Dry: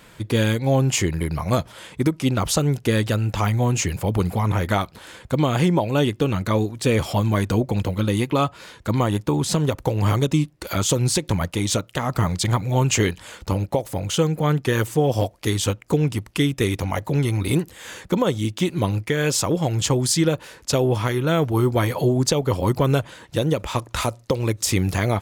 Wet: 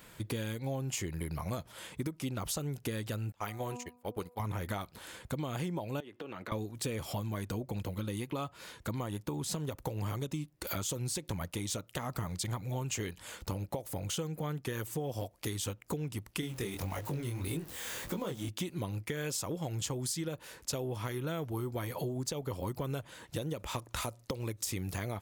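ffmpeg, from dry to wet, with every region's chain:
ffmpeg -i in.wav -filter_complex "[0:a]asettb=1/sr,asplit=3[link_01][link_02][link_03];[link_01]atrim=end=3.324[link_04];[link_02]atrim=start=3.32:end=4.4,asetpts=PTS-STARTPTS,afade=type=in:duration=0.004:curve=qsin,afade=type=out:start_time=1.076:duration=0.004:curve=qsin,agate=range=-32dB:threshold=-21dB:ratio=16:release=100:detection=peak,bass=frequency=250:gain=-11,treble=frequency=4000:gain=-2,bandreject=frequency=244.2:width_type=h:width=4,bandreject=frequency=488.4:width_type=h:width=4,bandreject=frequency=732.6:width_type=h:width=4,bandreject=frequency=976.8:width_type=h:width=4,bandreject=frequency=1221:width_type=h:width=4[link_05];[link_03]atrim=start=4.396[link_06];[link_04][link_05]acrossfade=duration=0.004:curve1=hsin:curve2=qsin[link_07];[link_07][link_06]acrossfade=duration=0.004:curve1=qsin:curve2=hsin,asettb=1/sr,asplit=3[link_08][link_09][link_10];[link_08]atrim=end=6.004[link_11];[link_09]atrim=start=6:end=6.52,asetpts=PTS-STARTPTS,afade=type=in:duration=0.004:curve=qsin,afade=type=out:start_time=0.516:duration=0.004:curve=qsin,acrossover=split=270 3400:gain=0.112 1 0.158[link_12][link_13][link_14];[link_12][link_13][link_14]amix=inputs=3:normalize=0,acompressor=threshold=-30dB:ratio=16:attack=3.2:release=140:knee=1:detection=peak[link_15];[link_10]atrim=start=6.516[link_16];[link_11][link_15]acrossfade=duration=0.004:curve1=hsin:curve2=qsin[link_17];[link_17][link_16]acrossfade=duration=0.004:curve1=qsin:curve2=hsin,asettb=1/sr,asplit=3[link_18][link_19][link_20];[link_18]atrim=end=16.414[link_21];[link_19]atrim=start=16.41:end=18.49,asetpts=PTS-STARTPTS,afade=type=in:duration=0.004:curve=qsin,afade=type=out:start_time=2.076:duration=0.004:curve=qsin,aeval=exprs='val(0)+0.5*0.0282*sgn(val(0))':channel_layout=same,flanger=delay=18:depth=7.4:speed=1.7[link_22];[link_20]atrim=start=18.486[link_23];[link_21][link_22]acrossfade=duration=0.004:curve1=hsin:curve2=qsin[link_24];[link_24][link_23]acrossfade=duration=0.004:curve1=qsin:curve2=hsin,highshelf=frequency=11000:gain=12,acompressor=threshold=-26dB:ratio=6,volume=-7.5dB" out.wav

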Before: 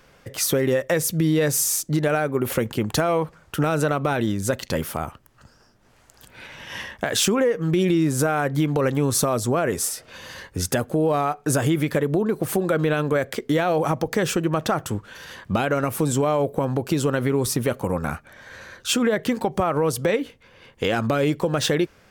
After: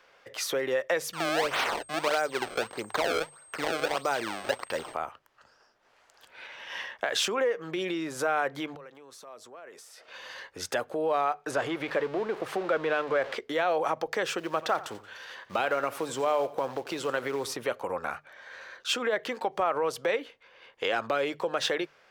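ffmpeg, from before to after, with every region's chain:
ffmpeg -i in.wav -filter_complex "[0:a]asettb=1/sr,asplit=3[link_01][link_02][link_03];[link_01]atrim=end=1.134[link_04];[link_02]atrim=start=1.13:end=4.94,asetpts=PTS-STARTPTS,afade=type=in:duration=0.004:curve=qsin,afade=type=out:start_time=3.806:duration=0.004:curve=qsin,highshelf=frequency=9900:gain=-3,acrusher=samples=27:mix=1:aa=0.000001:lfo=1:lforange=43.2:lforate=1.6,aeval=exprs='val(0)+0.0112*sin(2*PI*8400*n/s)':channel_layout=same[link_05];[link_03]atrim=start=4.936[link_06];[link_04][link_05]acrossfade=duration=0.004:curve1=hsin:curve2=qsin[link_07];[link_07][link_06]acrossfade=duration=0.004:curve1=qsin:curve2=hsin,asettb=1/sr,asplit=3[link_08][link_09][link_10];[link_08]atrim=end=8.754[link_11];[link_09]atrim=start=8.75:end=10.08,asetpts=PTS-STARTPTS,afade=type=in:duration=0.004:curve=qsin,afade=type=out:start_time=1.326:duration=0.004:curve=qsin,highpass=160,acompressor=threshold=-36dB:ratio=10:attack=3.2:release=140:knee=1:detection=peak[link_12];[link_10]atrim=start=10.076[link_13];[link_11][link_12]acrossfade=duration=0.004:curve1=hsin:curve2=qsin[link_14];[link_14][link_13]acrossfade=duration=0.004:curve1=qsin:curve2=hsin,asettb=1/sr,asplit=3[link_15][link_16][link_17];[link_15]atrim=end=11.514[link_18];[link_16]atrim=start=11.51:end=13.38,asetpts=PTS-STARTPTS,afade=type=in:duration=0.004:curve=qsin,afade=type=out:start_time=1.866:duration=0.004:curve=qsin,aeval=exprs='val(0)+0.5*0.0376*sgn(val(0))':channel_layout=same,aemphasis=mode=reproduction:type=50kf[link_19];[link_17]atrim=start=13.376[link_20];[link_18][link_19]acrossfade=duration=0.004:curve1=hsin:curve2=qsin[link_21];[link_21][link_20]acrossfade=duration=0.004:curve1=qsin:curve2=hsin,asettb=1/sr,asplit=3[link_22][link_23][link_24];[link_22]atrim=end=14.384[link_25];[link_23]atrim=start=14.38:end=17.56,asetpts=PTS-STARTPTS,afade=type=in:duration=0.004:curve=qsin,afade=type=out:start_time=3.176:duration=0.004:curve=qsin,acrusher=bits=6:mode=log:mix=0:aa=0.000001,aecho=1:1:88|176|264:0.141|0.0523|0.0193,atrim=end_sample=140238[link_26];[link_24]atrim=start=17.556[link_27];[link_25][link_26]acrossfade=duration=0.004:curve1=hsin:curve2=qsin[link_28];[link_28][link_27]acrossfade=duration=0.004:curve1=qsin:curve2=hsin,acrossover=split=420 5400:gain=0.0891 1 0.224[link_29][link_30][link_31];[link_29][link_30][link_31]amix=inputs=3:normalize=0,bandreject=frequency=50:width_type=h:width=6,bandreject=frequency=100:width_type=h:width=6,bandreject=frequency=150:width_type=h:width=6,volume=-3dB" out.wav

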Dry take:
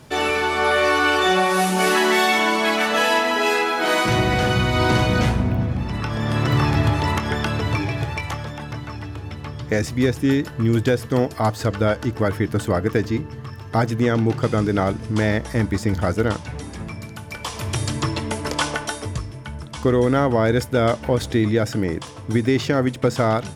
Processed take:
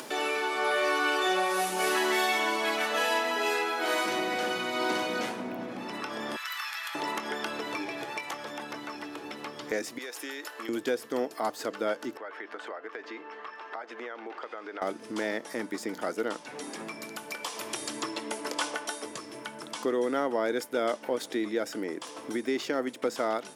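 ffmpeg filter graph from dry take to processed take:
ffmpeg -i in.wav -filter_complex "[0:a]asettb=1/sr,asplit=3[link_01][link_02][link_03];[link_01]atrim=end=6.364[link_04];[link_02]atrim=start=6.36:end=6.95,asetpts=PTS-STARTPTS,afade=type=in:duration=0.004:curve=qsin,afade=type=out:start_time=0.586:duration=0.004:curve=qsin,highpass=frequency=1300:width=0.5412,highpass=frequency=1300:width=1.3066,equalizer=frequency=13000:width_type=o:width=0.21:gain=9.5[link_05];[link_03]atrim=start=6.946[link_06];[link_04][link_05]acrossfade=duration=0.004:curve1=hsin:curve2=qsin[link_07];[link_07][link_06]acrossfade=duration=0.004:curve1=qsin:curve2=hsin,asettb=1/sr,asplit=3[link_08][link_09][link_10];[link_08]atrim=end=9.984[link_11];[link_09]atrim=start=9.98:end=10.69,asetpts=PTS-STARTPTS,afade=type=in:duration=0.004:curve=qsin,afade=type=out:start_time=0.706:duration=0.004:curve=qsin,highpass=710,acompressor=threshold=-31dB:ratio=4:attack=3.2:release=140:knee=1:detection=peak[link_12];[link_10]atrim=start=10.686[link_13];[link_11][link_12]acrossfade=duration=0.004:curve1=hsin:curve2=qsin[link_14];[link_14][link_13]acrossfade=duration=0.004:curve1=qsin:curve2=hsin,asettb=1/sr,asplit=3[link_15][link_16][link_17];[link_15]atrim=end=12.174[link_18];[link_16]atrim=start=12.17:end=14.82,asetpts=PTS-STARTPTS,afade=type=in:duration=0.004:curve=qsin,afade=type=out:start_time=2.646:duration=0.004:curve=qsin,highpass=690,lowpass=2400,acompressor=threshold=-37dB:ratio=2.5:attack=3.2:release=140:knee=1:detection=peak[link_19];[link_17]atrim=start=14.816[link_20];[link_18][link_19]acrossfade=duration=0.004:curve1=hsin:curve2=qsin[link_21];[link_21][link_20]acrossfade=duration=0.004:curve1=qsin:curve2=hsin,highpass=frequency=270:width=0.5412,highpass=frequency=270:width=1.3066,highshelf=frequency=10000:gain=5,acompressor=mode=upward:threshold=-21dB:ratio=2.5,volume=-9dB" out.wav

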